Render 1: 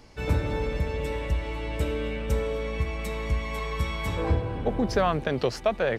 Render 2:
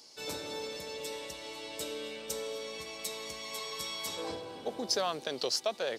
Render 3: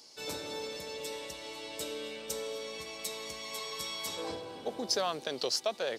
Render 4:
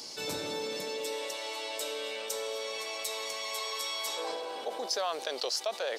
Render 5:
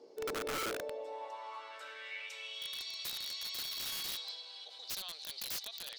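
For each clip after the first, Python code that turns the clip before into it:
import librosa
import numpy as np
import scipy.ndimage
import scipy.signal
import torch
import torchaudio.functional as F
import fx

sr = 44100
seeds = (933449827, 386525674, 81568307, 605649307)

y1 = scipy.signal.sosfilt(scipy.signal.butter(2, 340.0, 'highpass', fs=sr, output='sos'), x)
y1 = fx.high_shelf_res(y1, sr, hz=3100.0, db=13.0, q=1.5)
y1 = y1 * 10.0 ** (-7.5 / 20.0)
y2 = y1
y3 = fx.filter_sweep_highpass(y2, sr, from_hz=110.0, to_hz=580.0, start_s=0.42, end_s=1.41, q=1.1)
y3 = fx.env_flatten(y3, sr, amount_pct=50)
y3 = y3 * 10.0 ** (-3.0 / 20.0)
y4 = fx.filter_sweep_bandpass(y3, sr, from_hz=430.0, to_hz=4100.0, start_s=0.57, end_s=2.87, q=4.6)
y4 = (np.mod(10.0 ** (37.0 / 20.0) * y4 + 1.0, 2.0) - 1.0) / 10.0 ** (37.0 / 20.0)
y4 = y4 * 10.0 ** (4.0 / 20.0)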